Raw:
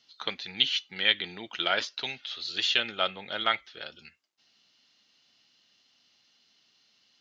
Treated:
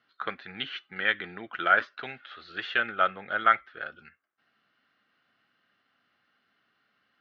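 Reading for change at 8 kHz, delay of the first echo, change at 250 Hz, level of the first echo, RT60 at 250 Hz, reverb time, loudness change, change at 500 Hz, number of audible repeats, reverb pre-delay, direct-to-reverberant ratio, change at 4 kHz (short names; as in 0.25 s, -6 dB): n/a, none, +0.5 dB, none, none, none, +0.5 dB, +1.0 dB, none, none, none, -11.5 dB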